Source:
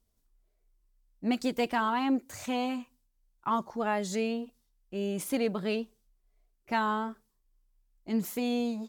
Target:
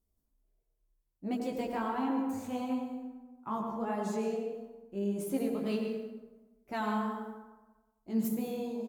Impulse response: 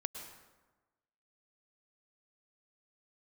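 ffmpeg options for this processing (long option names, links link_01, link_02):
-filter_complex "[0:a]equalizer=frequency=3000:width=0.39:gain=-10.5,bandreject=frequency=60:width_type=h:width=6,bandreject=frequency=120:width_type=h:width=6,bandreject=frequency=180:width_type=h:width=6,bandreject=frequency=240:width_type=h:width=6,flanger=delay=15:depth=5.1:speed=1.5,asplit=2[link_01][link_02];[link_02]adelay=89,lowpass=frequency=860:poles=1,volume=-4.5dB,asplit=2[link_03][link_04];[link_04]adelay=89,lowpass=frequency=860:poles=1,volume=0.46,asplit=2[link_05][link_06];[link_06]adelay=89,lowpass=frequency=860:poles=1,volume=0.46,asplit=2[link_07][link_08];[link_08]adelay=89,lowpass=frequency=860:poles=1,volume=0.46,asplit=2[link_09][link_10];[link_10]adelay=89,lowpass=frequency=860:poles=1,volume=0.46,asplit=2[link_11][link_12];[link_12]adelay=89,lowpass=frequency=860:poles=1,volume=0.46[link_13];[link_01][link_03][link_05][link_07][link_09][link_11][link_13]amix=inputs=7:normalize=0[link_14];[1:a]atrim=start_sample=2205[link_15];[link_14][link_15]afir=irnorm=-1:irlink=0,asplit=3[link_16][link_17][link_18];[link_16]afade=type=out:start_time=5.65:duration=0.02[link_19];[link_17]adynamicequalizer=threshold=0.00251:dfrequency=1600:dqfactor=0.7:tfrequency=1600:tqfactor=0.7:attack=5:release=100:ratio=0.375:range=3.5:mode=boostabove:tftype=highshelf,afade=type=in:start_time=5.65:duration=0.02,afade=type=out:start_time=8.27:duration=0.02[link_20];[link_18]afade=type=in:start_time=8.27:duration=0.02[link_21];[link_19][link_20][link_21]amix=inputs=3:normalize=0,volume=1.5dB"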